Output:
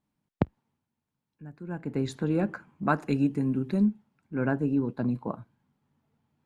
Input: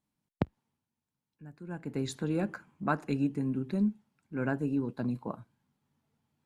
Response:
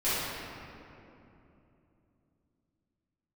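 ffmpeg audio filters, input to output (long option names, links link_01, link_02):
-af "asetnsamples=nb_out_samples=441:pad=0,asendcmd='2.83 highshelf g -2;3.85 highshelf g -11.5',highshelf=frequency=3800:gain=-10,volume=4.5dB"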